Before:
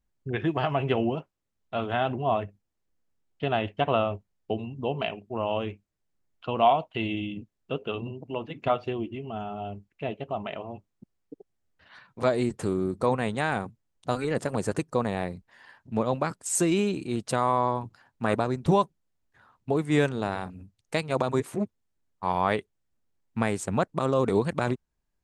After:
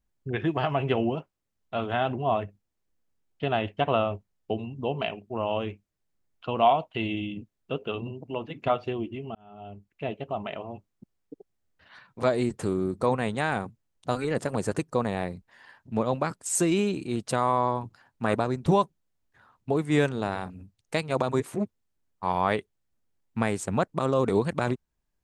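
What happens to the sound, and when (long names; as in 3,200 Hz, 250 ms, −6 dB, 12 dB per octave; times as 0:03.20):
0:09.35–0:10.04: fade in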